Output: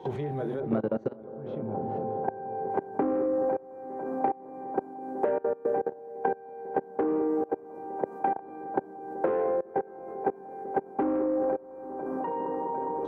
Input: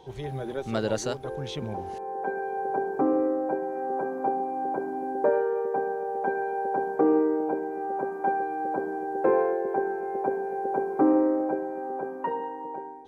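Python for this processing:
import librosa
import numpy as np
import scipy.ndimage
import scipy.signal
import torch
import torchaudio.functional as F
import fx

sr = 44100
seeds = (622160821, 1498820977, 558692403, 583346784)

y = fx.low_shelf(x, sr, hz=470.0, db=7.5)
y = fx.doubler(y, sr, ms=27.0, db=-9)
y = 10.0 ** (-12.0 / 20.0) * np.tanh(y / 10.0 ** (-12.0 / 20.0))
y = fx.lowpass(y, sr, hz=1300.0, slope=12, at=(0.6, 2.7))
y = fx.echo_wet_lowpass(y, sr, ms=208, feedback_pct=74, hz=990.0, wet_db=-7)
y = fx.level_steps(y, sr, step_db=23)
y = fx.low_shelf(y, sr, hz=73.0, db=-9.0)
y = fx.band_squash(y, sr, depth_pct=100)
y = y * 10.0 ** (-2.5 / 20.0)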